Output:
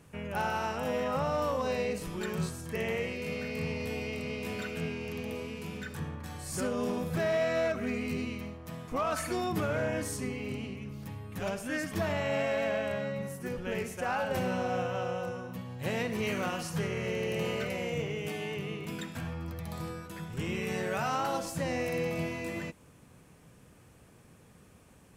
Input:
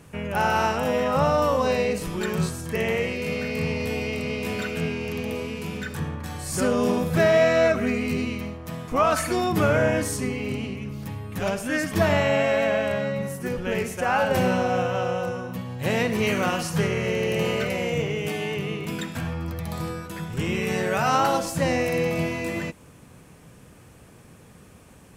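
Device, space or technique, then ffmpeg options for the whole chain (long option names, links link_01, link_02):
limiter into clipper: -af "alimiter=limit=-13dB:level=0:latency=1:release=241,asoftclip=type=hard:threshold=-16dB,volume=-8dB"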